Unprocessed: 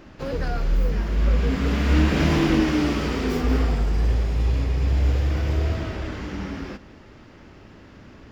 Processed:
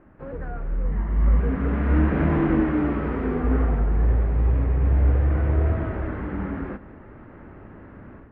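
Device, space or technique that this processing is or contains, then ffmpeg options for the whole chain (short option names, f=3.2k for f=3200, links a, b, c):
action camera in a waterproof case: -filter_complex "[0:a]asettb=1/sr,asplit=3[a][b][c];[a]atrim=end=0.854[d];[b]atrim=start=0.85:end=1.4,asetpts=PTS-STARTPTS,afade=t=in:d=0.004:c=qsin,afade=t=out:st=0.546:d=0.004:c=qsin,aecho=1:1:1:0.42,atrim=end_sample=24255[e];[c]atrim=start=1.396[f];[d][e]acrossfade=d=0.004:c1=hsin:c2=qsin[g];[g][f]acrossfade=d=0.004:c1=qsin:c2=hsin,lowpass=f=1.8k:w=0.5412,lowpass=f=1.8k:w=1.3066,dynaudnorm=f=680:g=3:m=10.5dB,volume=-7dB" -ar 48000 -c:a aac -b:a 64k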